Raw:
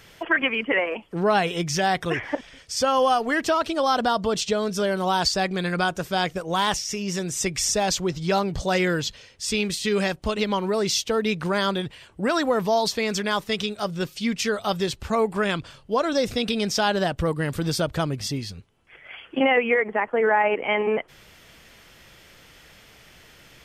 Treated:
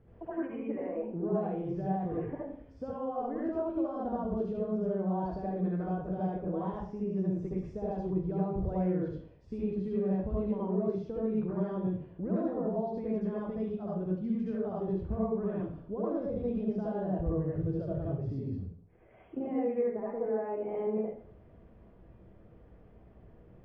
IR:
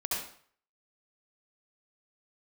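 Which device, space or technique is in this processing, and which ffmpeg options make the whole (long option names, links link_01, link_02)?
television next door: -filter_complex "[0:a]asettb=1/sr,asplit=3[link_01][link_02][link_03];[link_01]atrim=end=17.444[link_04];[link_02]atrim=start=17.44:end=18.21,asetpts=PTS-STARTPTS,afade=type=in:duration=0.004:curve=qsin,afade=type=out:start_time=0.766:duration=0.004:curve=qsin,equalizer=frequency=100:width_type=o:width=0.67:gain=7,equalizer=frequency=250:width_type=o:width=0.67:gain=-10,equalizer=frequency=1000:width_type=o:width=0.67:gain=-9[link_05];[link_03]atrim=start=18.206[link_06];[link_04][link_05]acrossfade=duration=0.004:curve1=hsin:curve2=qsin[link_07];[link_07][link_06]acrossfade=duration=0.004:curve1=qsin:curve2=hsin,acompressor=threshold=-28dB:ratio=3,lowpass=430[link_08];[1:a]atrim=start_sample=2205[link_09];[link_08][link_09]afir=irnorm=-1:irlink=0,volume=-3.5dB"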